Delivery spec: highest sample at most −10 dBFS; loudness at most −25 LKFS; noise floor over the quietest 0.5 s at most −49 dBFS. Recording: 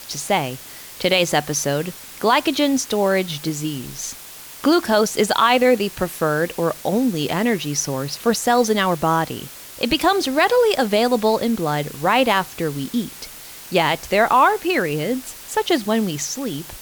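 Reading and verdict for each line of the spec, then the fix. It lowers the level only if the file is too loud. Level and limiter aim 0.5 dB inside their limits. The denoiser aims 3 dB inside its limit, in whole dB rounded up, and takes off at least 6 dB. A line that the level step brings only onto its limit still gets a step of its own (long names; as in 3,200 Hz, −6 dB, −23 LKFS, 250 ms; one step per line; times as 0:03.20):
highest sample −5.0 dBFS: out of spec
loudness −19.5 LKFS: out of spec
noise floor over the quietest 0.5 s −39 dBFS: out of spec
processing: broadband denoise 7 dB, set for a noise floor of −39 dBFS
level −6 dB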